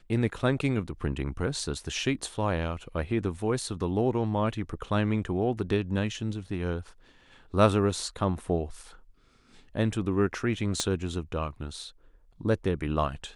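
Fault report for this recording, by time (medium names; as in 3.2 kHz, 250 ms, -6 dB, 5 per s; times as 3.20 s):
10.80 s: pop -13 dBFS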